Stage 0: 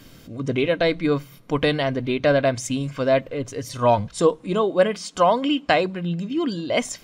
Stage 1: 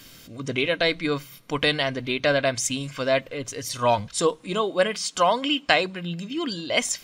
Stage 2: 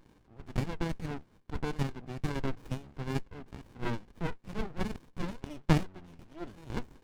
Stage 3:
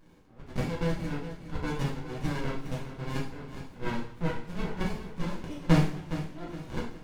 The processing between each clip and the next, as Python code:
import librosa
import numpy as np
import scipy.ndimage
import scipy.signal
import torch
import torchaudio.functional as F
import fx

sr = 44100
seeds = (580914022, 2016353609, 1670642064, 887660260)

y1 = fx.tilt_shelf(x, sr, db=-6.0, hz=1300.0)
y2 = fx.octave_divider(y1, sr, octaves=1, level_db=4.0)
y2 = fx.filter_lfo_bandpass(y2, sr, shape='sine', hz=2.3, low_hz=750.0, high_hz=2500.0, q=2.5)
y2 = fx.running_max(y2, sr, window=65)
y3 = fx.echo_feedback(y2, sr, ms=413, feedback_pct=35, wet_db=-11.5)
y3 = fx.rev_double_slope(y3, sr, seeds[0], early_s=0.51, late_s=1.6, knee_db=-18, drr_db=-4.5)
y3 = y3 * 10.0 ** (-2.5 / 20.0)